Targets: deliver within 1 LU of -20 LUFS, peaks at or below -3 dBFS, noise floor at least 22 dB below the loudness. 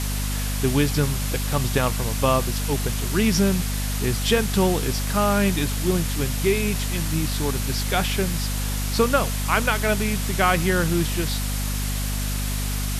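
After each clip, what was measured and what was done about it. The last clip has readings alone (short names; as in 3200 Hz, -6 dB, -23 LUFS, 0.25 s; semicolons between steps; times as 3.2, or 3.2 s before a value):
hum 50 Hz; harmonics up to 250 Hz; hum level -23 dBFS; noise floor -25 dBFS; noise floor target -45 dBFS; loudness -23.0 LUFS; peak -5.5 dBFS; loudness target -20.0 LUFS
-> notches 50/100/150/200/250 Hz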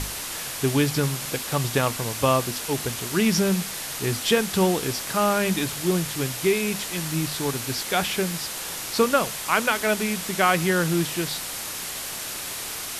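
hum none; noise floor -33 dBFS; noise floor target -46 dBFS
-> denoiser 13 dB, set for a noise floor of -33 dBFS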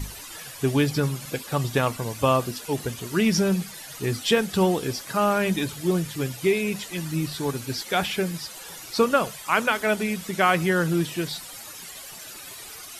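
noise floor -41 dBFS; noise floor target -47 dBFS
-> denoiser 6 dB, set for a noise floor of -41 dBFS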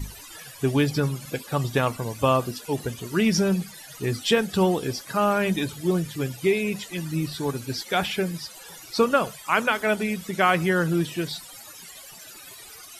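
noise floor -44 dBFS; noise floor target -47 dBFS
-> denoiser 6 dB, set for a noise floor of -44 dBFS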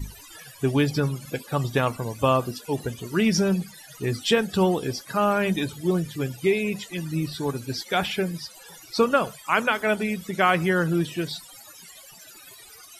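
noise floor -47 dBFS; loudness -25.0 LUFS; peak -6.5 dBFS; loudness target -20.0 LUFS
-> gain +5 dB; limiter -3 dBFS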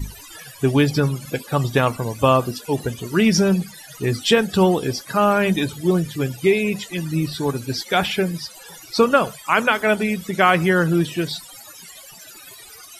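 loudness -20.0 LUFS; peak -3.0 dBFS; noise floor -42 dBFS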